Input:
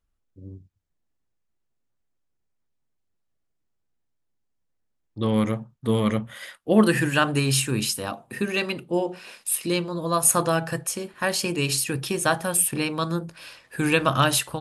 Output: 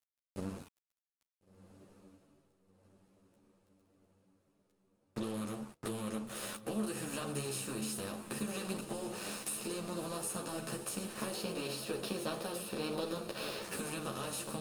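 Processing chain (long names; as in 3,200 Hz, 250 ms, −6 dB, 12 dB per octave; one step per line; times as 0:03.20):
compressor on every frequency bin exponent 0.4
dead-zone distortion −29.5 dBFS
dynamic equaliser 1,800 Hz, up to −7 dB, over −34 dBFS, Q 0.94
downward compressor 6 to 1, threshold −30 dBFS, peak gain reduction 17.5 dB
0:11.34–0:13.62: graphic EQ with 10 bands 125 Hz −3 dB, 500 Hz +6 dB, 4,000 Hz +6 dB, 8,000 Hz −10 dB
feedback delay with all-pass diffusion 1,423 ms, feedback 54%, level −13 dB
string-ensemble chorus
level −4 dB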